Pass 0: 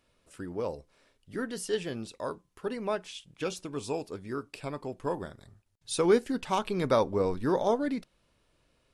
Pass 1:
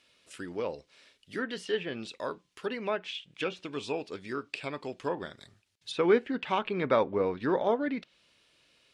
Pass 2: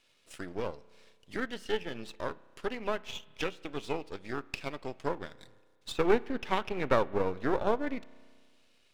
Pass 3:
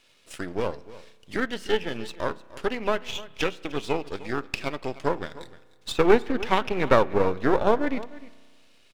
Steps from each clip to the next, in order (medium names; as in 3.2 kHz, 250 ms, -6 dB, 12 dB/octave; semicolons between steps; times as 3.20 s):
frequency weighting D; low-pass that closes with the level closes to 2.1 kHz, closed at -26.5 dBFS; dynamic bell 5.1 kHz, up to -7 dB, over -52 dBFS, Q 1.1
partial rectifier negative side -12 dB; spring tank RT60 1.6 s, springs 32 ms, chirp 30 ms, DRR 16 dB; transient shaper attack +3 dB, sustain -4 dB
delay 303 ms -18 dB; trim +7.5 dB